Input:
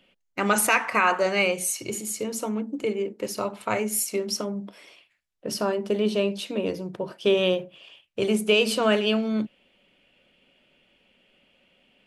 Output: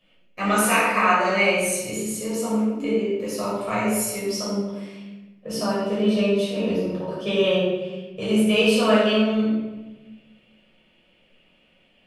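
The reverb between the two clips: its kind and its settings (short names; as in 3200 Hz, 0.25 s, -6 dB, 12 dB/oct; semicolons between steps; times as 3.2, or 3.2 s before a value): shoebox room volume 650 m³, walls mixed, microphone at 5.9 m; gain -9.5 dB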